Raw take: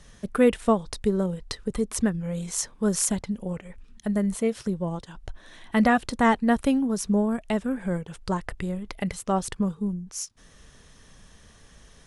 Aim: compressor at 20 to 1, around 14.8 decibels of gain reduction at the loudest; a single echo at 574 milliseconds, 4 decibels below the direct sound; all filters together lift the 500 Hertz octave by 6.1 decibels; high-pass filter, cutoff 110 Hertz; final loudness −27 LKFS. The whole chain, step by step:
high-pass filter 110 Hz
parametric band 500 Hz +7 dB
downward compressor 20 to 1, threshold −23 dBFS
single-tap delay 574 ms −4 dB
level +2 dB

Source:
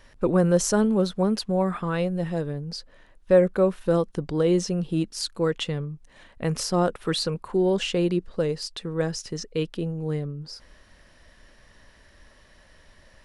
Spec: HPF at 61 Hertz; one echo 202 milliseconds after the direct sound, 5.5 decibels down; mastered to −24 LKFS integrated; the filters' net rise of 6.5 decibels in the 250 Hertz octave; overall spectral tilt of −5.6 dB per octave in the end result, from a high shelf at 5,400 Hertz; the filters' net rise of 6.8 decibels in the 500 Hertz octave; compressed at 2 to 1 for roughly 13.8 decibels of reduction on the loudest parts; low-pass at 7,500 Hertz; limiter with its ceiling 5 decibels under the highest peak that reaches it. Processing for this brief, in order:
high-pass filter 61 Hz
low-pass filter 7,500 Hz
parametric band 250 Hz +8.5 dB
parametric band 500 Hz +5.5 dB
high-shelf EQ 5,400 Hz +8.5 dB
downward compressor 2 to 1, threshold −32 dBFS
brickwall limiter −19.5 dBFS
single-tap delay 202 ms −5.5 dB
level +5.5 dB

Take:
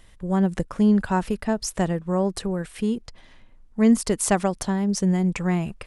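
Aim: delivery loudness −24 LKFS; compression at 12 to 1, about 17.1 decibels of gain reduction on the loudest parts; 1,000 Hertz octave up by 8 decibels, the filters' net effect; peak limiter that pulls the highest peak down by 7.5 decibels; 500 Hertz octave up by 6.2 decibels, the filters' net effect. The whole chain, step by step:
parametric band 500 Hz +6 dB
parametric band 1,000 Hz +8 dB
downward compressor 12 to 1, threshold −27 dBFS
level +10 dB
brickwall limiter −13.5 dBFS

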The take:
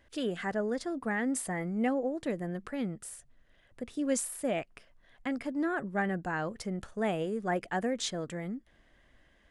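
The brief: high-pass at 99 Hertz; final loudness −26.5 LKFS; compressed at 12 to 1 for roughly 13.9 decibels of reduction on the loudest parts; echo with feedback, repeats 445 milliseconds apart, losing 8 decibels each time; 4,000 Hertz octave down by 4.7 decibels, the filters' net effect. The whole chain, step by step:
high-pass filter 99 Hz
parametric band 4,000 Hz −6 dB
downward compressor 12 to 1, threshold −40 dBFS
repeating echo 445 ms, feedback 40%, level −8 dB
level +18 dB

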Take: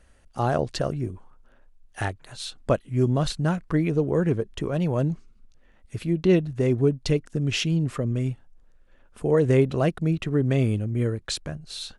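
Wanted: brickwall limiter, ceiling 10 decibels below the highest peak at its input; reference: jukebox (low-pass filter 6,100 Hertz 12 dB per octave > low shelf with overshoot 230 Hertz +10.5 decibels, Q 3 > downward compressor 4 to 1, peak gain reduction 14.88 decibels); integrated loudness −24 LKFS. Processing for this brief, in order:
brickwall limiter −18 dBFS
low-pass filter 6,100 Hz 12 dB per octave
low shelf with overshoot 230 Hz +10.5 dB, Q 3
downward compressor 4 to 1, threshold −24 dBFS
level +2.5 dB

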